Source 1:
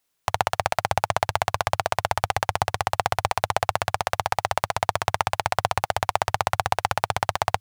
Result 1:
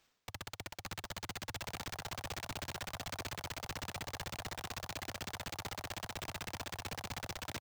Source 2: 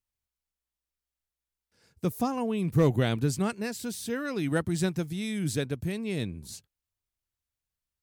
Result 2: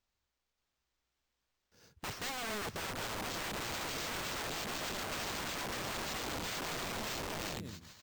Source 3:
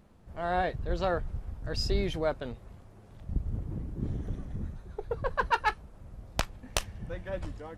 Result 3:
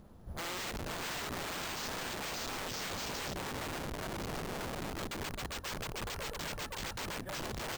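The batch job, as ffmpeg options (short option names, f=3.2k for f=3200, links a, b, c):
-af "aecho=1:1:580|957|1202|1361|1465:0.631|0.398|0.251|0.158|0.1,areverse,acompressor=threshold=-32dB:ratio=20,areverse,equalizer=f=2.3k:w=1.6:g=-7.5,acrusher=samples=4:mix=1:aa=0.000001,aeval=exprs='(mod(79.4*val(0)+1,2)-1)/79.4':c=same,volume=3.5dB"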